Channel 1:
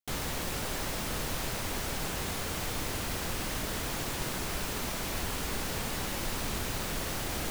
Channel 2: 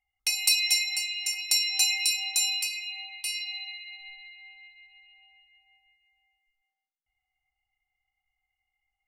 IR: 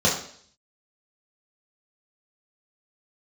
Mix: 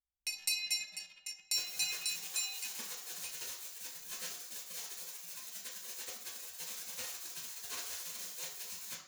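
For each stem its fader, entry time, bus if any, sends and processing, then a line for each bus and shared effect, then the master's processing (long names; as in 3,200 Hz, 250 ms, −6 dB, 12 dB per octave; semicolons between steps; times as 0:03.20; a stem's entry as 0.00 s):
−2.0 dB, 1.45 s, send −13 dB, gate on every frequency bin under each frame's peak −25 dB weak
−10.5 dB, 0.00 s, send −22 dB, adaptive Wiener filter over 41 samples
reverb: on, RT60 0.55 s, pre-delay 3 ms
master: hum removal 67.79 Hz, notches 31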